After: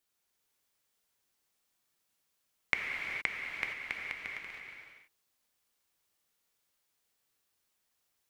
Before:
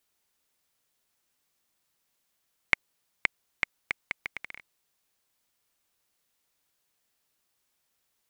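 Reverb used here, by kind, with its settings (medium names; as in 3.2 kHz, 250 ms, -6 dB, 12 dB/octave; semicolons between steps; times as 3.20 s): gated-style reverb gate 490 ms flat, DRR -1 dB; trim -6 dB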